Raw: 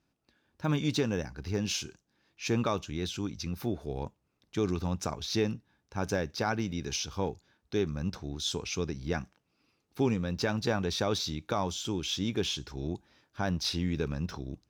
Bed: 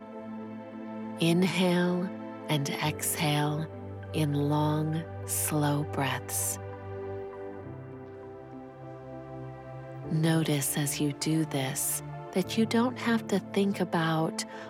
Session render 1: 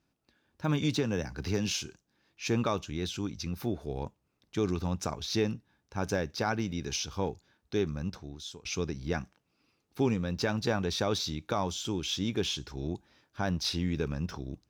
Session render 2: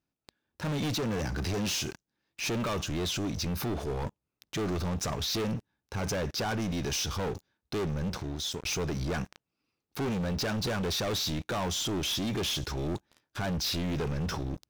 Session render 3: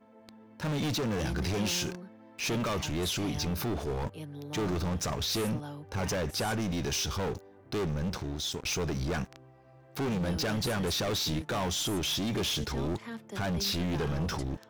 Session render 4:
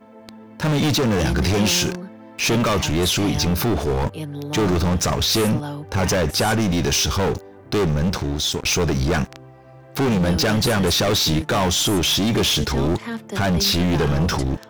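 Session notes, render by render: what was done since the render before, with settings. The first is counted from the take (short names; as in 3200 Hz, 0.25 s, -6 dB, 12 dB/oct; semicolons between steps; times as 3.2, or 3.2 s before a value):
0.82–1.71 three-band squash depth 70%; 7.89–8.65 fade out, to -19 dB; 13.97–14.39 notch 4000 Hz
sample leveller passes 5; limiter -28 dBFS, peak gain reduction 11 dB
add bed -14.5 dB
gain +12 dB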